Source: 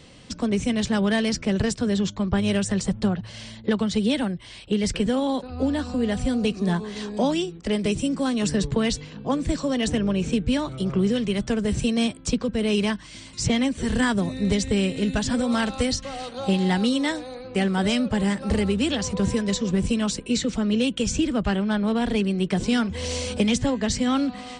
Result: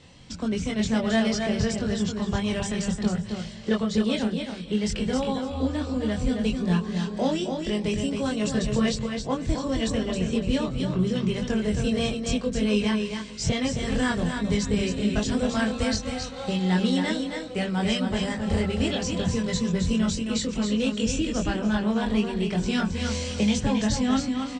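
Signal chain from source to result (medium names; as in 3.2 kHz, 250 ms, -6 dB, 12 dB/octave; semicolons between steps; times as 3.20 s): on a send: two-band feedback delay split 450 Hz, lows 176 ms, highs 286 ms, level -16 dB; on the sum: chorus voices 4, 0.1 Hz, delay 23 ms, depth 1.1 ms; steep low-pass 8.5 kHz 48 dB/octave; delay 268 ms -6 dB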